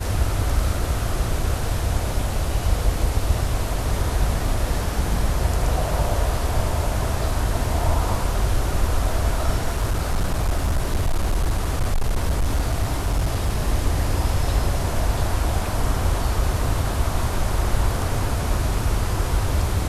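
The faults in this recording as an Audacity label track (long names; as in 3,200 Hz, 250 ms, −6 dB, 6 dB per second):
9.720000	13.560000	clipping −16 dBFS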